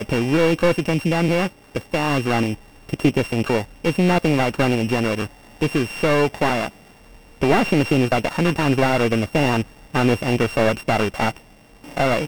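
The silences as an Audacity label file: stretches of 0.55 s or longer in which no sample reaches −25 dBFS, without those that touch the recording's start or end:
6.680000	7.420000	silence
11.310000	11.970000	silence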